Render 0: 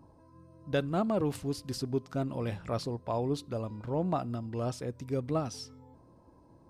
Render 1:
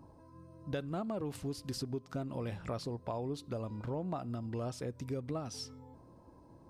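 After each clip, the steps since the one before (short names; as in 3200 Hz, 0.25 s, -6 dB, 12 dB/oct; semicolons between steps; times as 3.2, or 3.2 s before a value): compressor 5:1, threshold -36 dBFS, peak gain reduction 11 dB; gain +1 dB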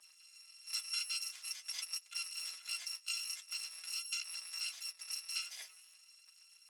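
FFT order left unsorted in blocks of 256 samples; flange 0.46 Hz, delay 4.9 ms, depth 5.9 ms, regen +48%; Butterworth band-pass 3700 Hz, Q 0.62; gain +7 dB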